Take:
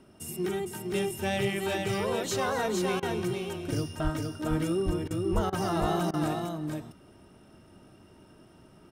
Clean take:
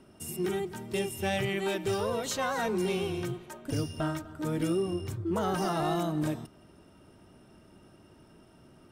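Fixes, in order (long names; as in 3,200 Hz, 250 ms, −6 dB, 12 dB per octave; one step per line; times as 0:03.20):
high-pass at the plosives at 0:04.03/0:04.85/0:05.34
repair the gap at 0:03.00/0:05.08/0:05.50/0:06.11, 25 ms
echo removal 459 ms −4 dB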